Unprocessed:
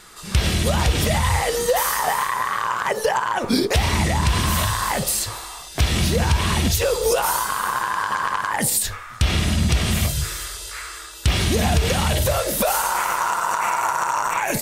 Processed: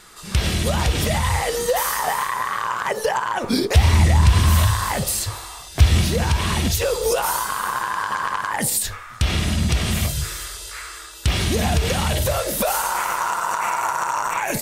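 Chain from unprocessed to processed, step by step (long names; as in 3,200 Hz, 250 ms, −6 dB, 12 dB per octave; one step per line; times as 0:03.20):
0:03.74–0:06.01: parametric band 83 Hz +10.5 dB 0.96 octaves
level −1 dB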